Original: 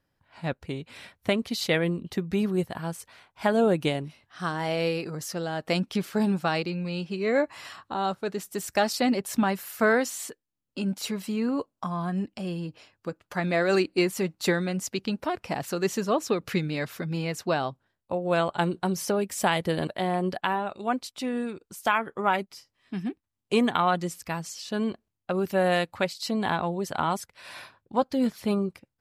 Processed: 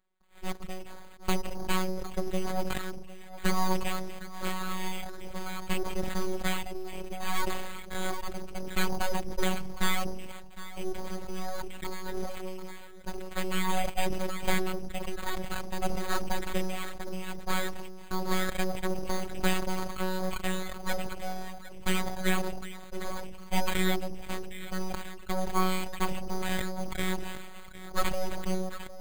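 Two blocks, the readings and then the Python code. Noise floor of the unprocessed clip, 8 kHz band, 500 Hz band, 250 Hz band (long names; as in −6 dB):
−82 dBFS, −2.5 dB, −8.5 dB, −7.5 dB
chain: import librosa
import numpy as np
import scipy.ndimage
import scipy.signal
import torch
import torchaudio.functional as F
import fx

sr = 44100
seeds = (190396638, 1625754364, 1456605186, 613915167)

p1 = fx.freq_compress(x, sr, knee_hz=2700.0, ratio=4.0)
p2 = scipy.signal.sosfilt(scipy.signal.butter(2, 55.0, 'highpass', fs=sr, output='sos'), p1)
p3 = p2 + fx.echo_alternate(p2, sr, ms=758, hz=1600.0, feedback_pct=53, wet_db=-14.0, dry=0)
p4 = fx.dereverb_blind(p3, sr, rt60_s=1.4)
p5 = np.abs(p4)
p6 = np.repeat(scipy.signal.resample_poly(p5, 1, 8), 8)[:len(p5)]
p7 = fx.robotise(p6, sr, hz=186.0)
y = fx.sustainer(p7, sr, db_per_s=39.0)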